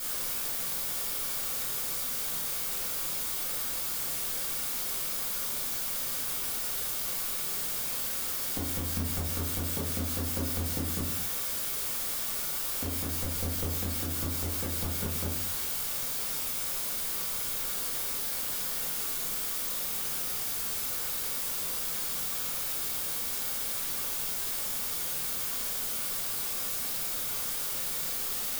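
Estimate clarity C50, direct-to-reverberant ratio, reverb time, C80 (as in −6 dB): 5.0 dB, −6.5 dB, 0.50 s, 10.0 dB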